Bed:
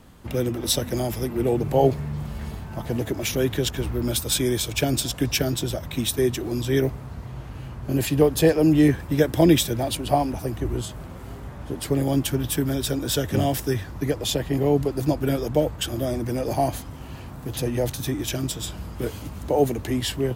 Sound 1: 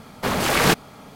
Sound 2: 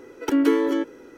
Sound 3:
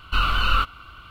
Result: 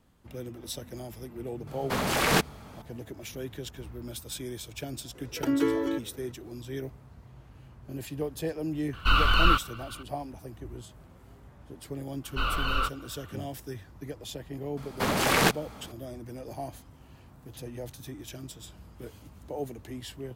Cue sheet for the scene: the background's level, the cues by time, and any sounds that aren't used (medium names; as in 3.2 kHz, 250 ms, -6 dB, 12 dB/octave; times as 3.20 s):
bed -15 dB
1.67 s: add 1 -6 dB
5.15 s: add 2 -6.5 dB
8.93 s: add 3 -1 dB
12.24 s: add 3 -8.5 dB + peaking EQ 510 Hz +9 dB 1.1 oct
14.77 s: add 1 -3.5 dB + transformer saturation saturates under 500 Hz